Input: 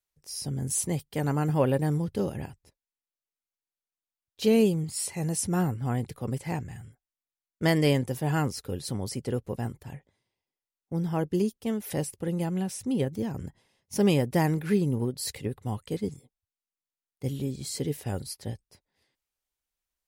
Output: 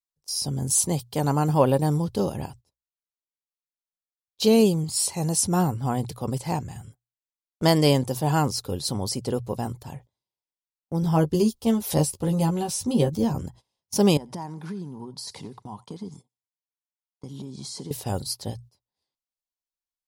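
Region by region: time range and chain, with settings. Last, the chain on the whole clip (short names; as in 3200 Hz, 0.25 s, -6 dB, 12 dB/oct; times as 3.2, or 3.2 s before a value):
11.02–13.41 low shelf 68 Hz +9 dB + doubler 13 ms -3 dB
14.17–17.91 compressor 8:1, threshold -36 dBFS + speaker cabinet 130–9200 Hz, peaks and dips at 190 Hz +5 dB, 520 Hz -6 dB, 950 Hz +7 dB, 2700 Hz -6 dB, 4200 Hz -5 dB, 7700 Hz -8 dB + thinning echo 88 ms, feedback 44%, high-pass 1000 Hz, level -18.5 dB
whole clip: notches 60/120 Hz; gate -49 dBFS, range -18 dB; EQ curve 440 Hz 0 dB, 1000 Hz +6 dB, 1900 Hz -7 dB, 4200 Hz +7 dB, 10000 Hz +3 dB; gain +3.5 dB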